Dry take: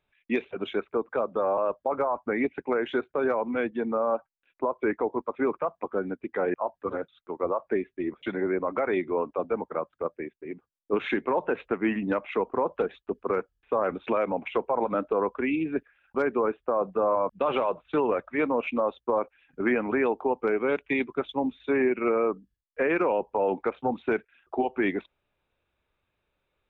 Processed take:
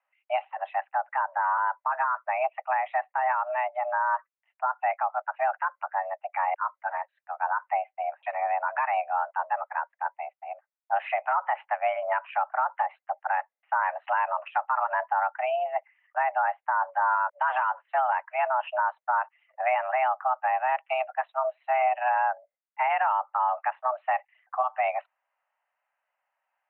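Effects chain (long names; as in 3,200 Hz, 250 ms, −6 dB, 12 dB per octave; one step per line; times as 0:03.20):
single-sideband voice off tune +380 Hz 190–2,100 Hz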